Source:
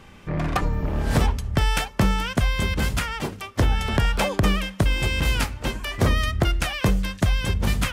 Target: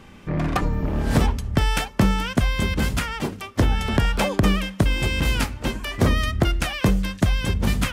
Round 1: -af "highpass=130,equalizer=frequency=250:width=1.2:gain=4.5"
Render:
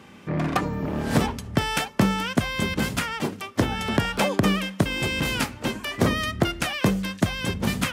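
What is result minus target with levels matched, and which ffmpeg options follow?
125 Hz band −2.5 dB
-af "equalizer=frequency=250:width=1.2:gain=4.5"

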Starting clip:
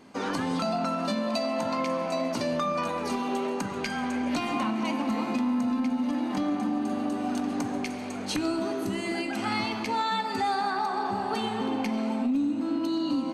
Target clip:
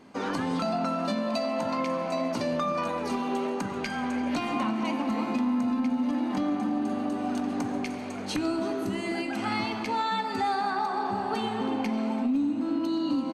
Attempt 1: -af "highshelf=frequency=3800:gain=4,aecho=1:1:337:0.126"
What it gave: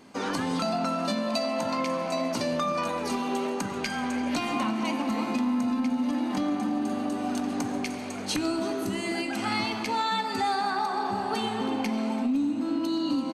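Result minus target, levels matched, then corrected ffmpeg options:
8,000 Hz band +6.0 dB
-af "highshelf=frequency=3800:gain=-4.5,aecho=1:1:337:0.126"

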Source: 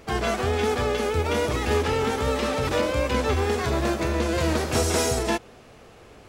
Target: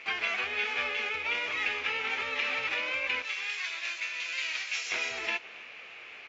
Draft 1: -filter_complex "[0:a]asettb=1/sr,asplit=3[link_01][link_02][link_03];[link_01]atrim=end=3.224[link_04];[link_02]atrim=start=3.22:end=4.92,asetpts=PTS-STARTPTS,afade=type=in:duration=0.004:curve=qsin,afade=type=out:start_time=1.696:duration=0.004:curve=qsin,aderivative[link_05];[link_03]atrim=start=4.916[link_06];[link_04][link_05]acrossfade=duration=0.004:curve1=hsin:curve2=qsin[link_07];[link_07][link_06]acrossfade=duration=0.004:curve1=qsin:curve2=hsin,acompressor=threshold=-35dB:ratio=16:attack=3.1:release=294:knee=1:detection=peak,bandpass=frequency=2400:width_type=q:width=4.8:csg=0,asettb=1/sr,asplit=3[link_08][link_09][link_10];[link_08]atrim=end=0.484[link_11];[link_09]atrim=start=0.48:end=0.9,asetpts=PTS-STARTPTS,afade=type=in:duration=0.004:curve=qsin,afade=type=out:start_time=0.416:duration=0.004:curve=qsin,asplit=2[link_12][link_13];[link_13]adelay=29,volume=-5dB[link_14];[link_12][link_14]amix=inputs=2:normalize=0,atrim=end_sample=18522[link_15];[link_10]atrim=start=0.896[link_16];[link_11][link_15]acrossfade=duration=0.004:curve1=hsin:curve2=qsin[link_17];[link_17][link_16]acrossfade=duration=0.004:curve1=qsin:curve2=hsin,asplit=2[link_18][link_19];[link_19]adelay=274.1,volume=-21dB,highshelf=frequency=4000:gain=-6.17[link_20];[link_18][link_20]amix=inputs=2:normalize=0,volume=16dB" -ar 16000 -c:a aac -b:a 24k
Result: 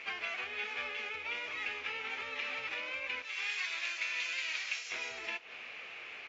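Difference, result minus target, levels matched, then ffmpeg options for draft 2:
downward compressor: peak gain reduction +7.5 dB
-filter_complex "[0:a]asettb=1/sr,asplit=3[link_01][link_02][link_03];[link_01]atrim=end=3.224[link_04];[link_02]atrim=start=3.22:end=4.92,asetpts=PTS-STARTPTS,afade=type=in:duration=0.004:curve=qsin,afade=type=out:start_time=1.696:duration=0.004:curve=qsin,aderivative[link_05];[link_03]atrim=start=4.916[link_06];[link_04][link_05]acrossfade=duration=0.004:curve1=hsin:curve2=qsin[link_07];[link_07][link_06]acrossfade=duration=0.004:curve1=qsin:curve2=hsin,acompressor=threshold=-27dB:ratio=16:attack=3.1:release=294:knee=1:detection=peak,bandpass=frequency=2400:width_type=q:width=4.8:csg=0,asettb=1/sr,asplit=3[link_08][link_09][link_10];[link_08]atrim=end=0.484[link_11];[link_09]atrim=start=0.48:end=0.9,asetpts=PTS-STARTPTS,afade=type=in:duration=0.004:curve=qsin,afade=type=out:start_time=0.416:duration=0.004:curve=qsin,asplit=2[link_12][link_13];[link_13]adelay=29,volume=-5dB[link_14];[link_12][link_14]amix=inputs=2:normalize=0,atrim=end_sample=18522[link_15];[link_10]atrim=start=0.896[link_16];[link_11][link_15]acrossfade=duration=0.004:curve1=hsin:curve2=qsin[link_17];[link_17][link_16]acrossfade=duration=0.004:curve1=qsin:curve2=hsin,asplit=2[link_18][link_19];[link_19]adelay=274.1,volume=-21dB,highshelf=frequency=4000:gain=-6.17[link_20];[link_18][link_20]amix=inputs=2:normalize=0,volume=16dB" -ar 16000 -c:a aac -b:a 24k

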